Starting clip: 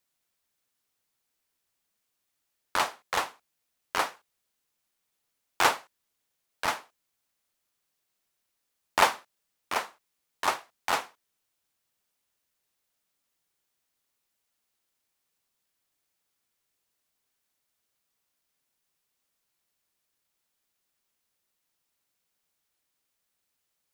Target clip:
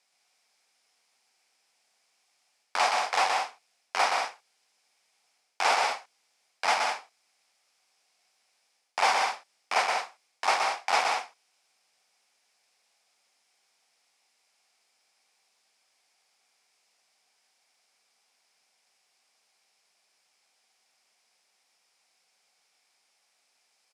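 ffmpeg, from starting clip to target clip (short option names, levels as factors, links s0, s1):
-af "areverse,acompressor=threshold=0.0251:ratio=12,areverse,highpass=290,equalizer=f=320:t=q:w=4:g=-7,equalizer=f=760:t=q:w=4:g=9,equalizer=f=2300:t=q:w=4:g=7,equalizer=f=5100:t=q:w=4:g=8,lowpass=f=9900:w=0.5412,lowpass=f=9900:w=1.3066,aecho=1:1:122.4|186.6:0.631|0.447,volume=2.24"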